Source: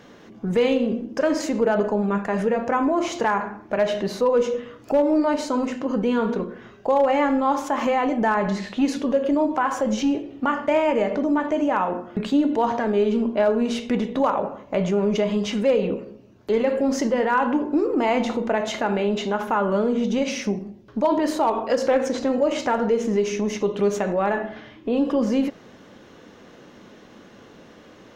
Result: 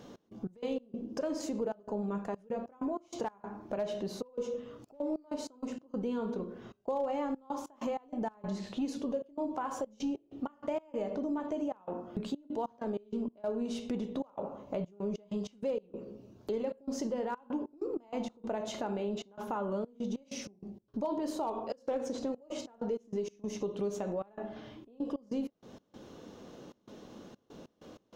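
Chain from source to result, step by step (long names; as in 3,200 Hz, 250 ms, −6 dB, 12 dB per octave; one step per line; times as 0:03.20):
parametric band 1,900 Hz −11 dB 1.1 octaves
downward compressor 2 to 1, threshold −37 dBFS, peak gain reduction 11.5 dB
gate pattern "x.x.x.xxxxx.xxx." 96 BPM −24 dB
level −2.5 dB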